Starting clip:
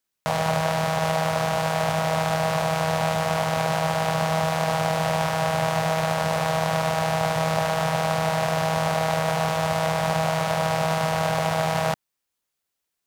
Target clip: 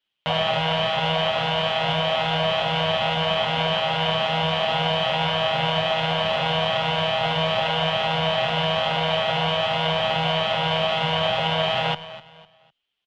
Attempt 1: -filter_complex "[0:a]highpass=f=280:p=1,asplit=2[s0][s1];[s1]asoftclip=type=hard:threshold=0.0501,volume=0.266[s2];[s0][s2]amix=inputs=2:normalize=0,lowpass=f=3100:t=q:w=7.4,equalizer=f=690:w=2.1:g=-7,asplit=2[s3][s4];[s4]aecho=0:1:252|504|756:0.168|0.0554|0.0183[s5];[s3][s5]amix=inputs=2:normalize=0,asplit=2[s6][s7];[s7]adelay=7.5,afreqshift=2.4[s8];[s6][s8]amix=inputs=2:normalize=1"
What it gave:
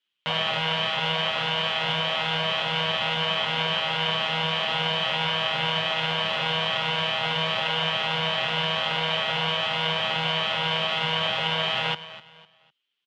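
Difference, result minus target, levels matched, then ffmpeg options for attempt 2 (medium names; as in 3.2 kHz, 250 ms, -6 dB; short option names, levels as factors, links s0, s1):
500 Hz band -5.5 dB; 250 Hz band -3.5 dB
-filter_complex "[0:a]asplit=2[s0][s1];[s1]asoftclip=type=hard:threshold=0.0501,volume=0.266[s2];[s0][s2]amix=inputs=2:normalize=0,lowpass=f=3100:t=q:w=7.4,equalizer=f=690:w=2.1:g=2.5,asplit=2[s3][s4];[s4]aecho=0:1:252|504|756:0.168|0.0554|0.0183[s5];[s3][s5]amix=inputs=2:normalize=0,asplit=2[s6][s7];[s7]adelay=7.5,afreqshift=2.4[s8];[s6][s8]amix=inputs=2:normalize=1"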